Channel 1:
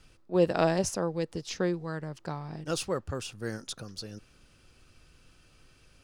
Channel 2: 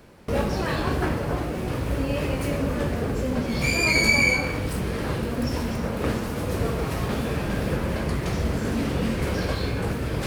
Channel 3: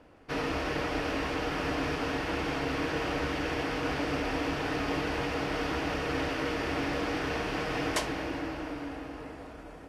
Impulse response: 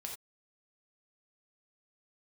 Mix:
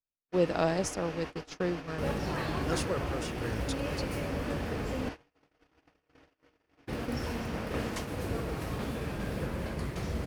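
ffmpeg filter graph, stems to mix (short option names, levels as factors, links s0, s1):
-filter_complex "[0:a]volume=0.708[s0];[1:a]adelay=1700,volume=0.355,asplit=3[s1][s2][s3];[s1]atrim=end=5.09,asetpts=PTS-STARTPTS,afade=t=out:st=5.086:d=0.004:c=hsin[s4];[s2]atrim=start=5.09:end=6.87,asetpts=PTS-STARTPTS,volume=0[s5];[s3]atrim=start=6.87,asetpts=PTS-STARTPTS,afade=t=in:d=0.004:c=hsin[s6];[s4][s5][s6]concat=n=3:v=0:a=1[s7];[2:a]equalizer=f=6400:w=7.7:g=3,volume=0.335[s8];[s0][s7][s8]amix=inputs=3:normalize=0,agate=range=0.00708:threshold=0.0158:ratio=16:detection=peak"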